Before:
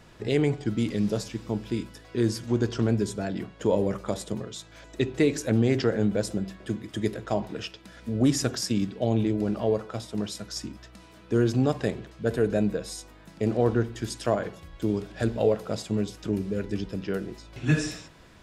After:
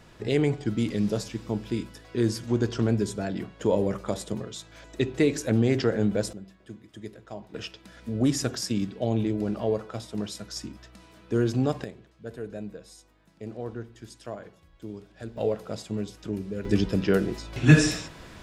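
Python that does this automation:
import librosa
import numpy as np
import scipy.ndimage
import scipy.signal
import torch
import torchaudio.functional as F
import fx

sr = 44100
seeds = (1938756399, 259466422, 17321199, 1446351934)

y = fx.gain(x, sr, db=fx.steps((0.0, 0.0), (6.33, -12.5), (7.54, -1.5), (11.84, -12.5), (15.37, -4.0), (16.65, 7.5)))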